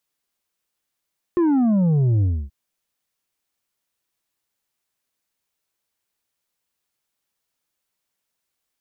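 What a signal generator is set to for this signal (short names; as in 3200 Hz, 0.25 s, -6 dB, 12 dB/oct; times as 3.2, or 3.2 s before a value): sub drop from 360 Hz, over 1.13 s, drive 5.5 dB, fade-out 0.28 s, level -15.5 dB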